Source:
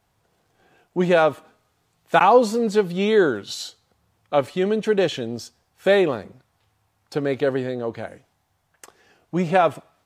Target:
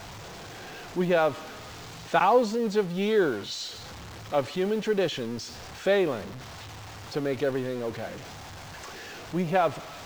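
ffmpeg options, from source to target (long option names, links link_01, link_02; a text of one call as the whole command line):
ffmpeg -i in.wav -af "aeval=exprs='val(0)+0.5*0.0398*sgn(val(0))':channel_layout=same,lowpass=frequency=6900:width=0.5412,lowpass=frequency=6900:width=1.3066,acrusher=bits=8:dc=4:mix=0:aa=0.000001,volume=-7dB" out.wav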